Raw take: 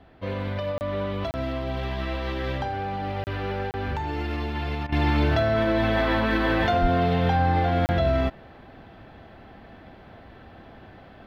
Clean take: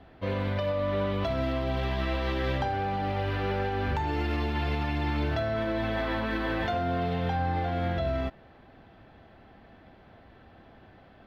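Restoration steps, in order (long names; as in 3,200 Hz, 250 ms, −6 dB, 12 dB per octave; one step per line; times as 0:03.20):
0:06.81–0:06.93: high-pass filter 140 Hz 24 dB per octave
repair the gap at 0:00.78/0:01.31/0:03.24/0:03.71/0:07.86, 29 ms
repair the gap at 0:04.87, 51 ms
0:04.89: level correction −7 dB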